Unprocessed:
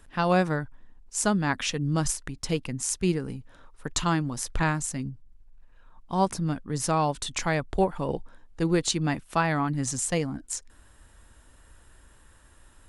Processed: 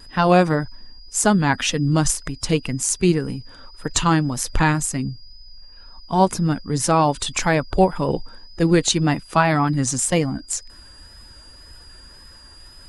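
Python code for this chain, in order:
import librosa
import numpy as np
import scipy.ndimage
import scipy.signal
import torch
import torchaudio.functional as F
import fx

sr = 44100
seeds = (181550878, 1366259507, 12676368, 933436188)

y = fx.spec_quant(x, sr, step_db=15)
y = y + 10.0 ** (-53.0 / 20.0) * np.sin(2.0 * np.pi * 4900.0 * np.arange(len(y)) / sr)
y = fx.vibrato(y, sr, rate_hz=1.9, depth_cents=29.0)
y = y * 10.0 ** (8.0 / 20.0)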